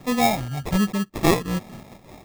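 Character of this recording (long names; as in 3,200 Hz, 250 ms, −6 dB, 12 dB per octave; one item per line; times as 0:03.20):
phaser sweep stages 2, 1.3 Hz, lowest notch 350–2,400 Hz
aliases and images of a low sample rate 1,500 Hz, jitter 0%
amplitude modulation by smooth noise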